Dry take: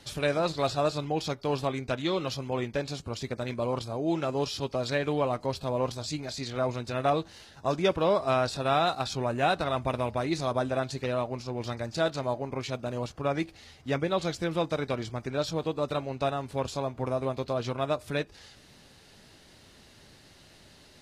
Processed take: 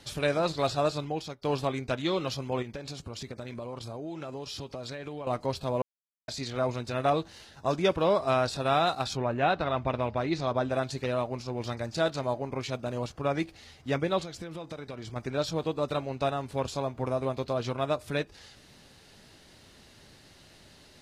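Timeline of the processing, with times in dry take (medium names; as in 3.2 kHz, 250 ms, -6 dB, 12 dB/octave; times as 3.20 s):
0.78–1.42 s: fade out equal-power, to -16.5 dB
2.62–5.27 s: compression 10:1, threshold -34 dBFS
5.82–6.28 s: mute
9.16–10.69 s: low-pass 3.1 kHz -> 5.1 kHz
14.21–15.16 s: compression 8:1, threshold -35 dBFS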